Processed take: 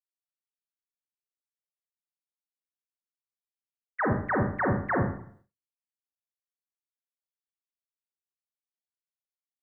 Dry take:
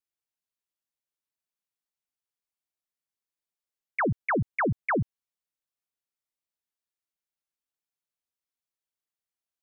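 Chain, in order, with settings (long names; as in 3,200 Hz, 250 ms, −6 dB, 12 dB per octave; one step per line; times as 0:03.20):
formants moved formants −3 semitones
four-comb reverb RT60 0.59 s, combs from 30 ms, DRR 0.5 dB
downward expander −54 dBFS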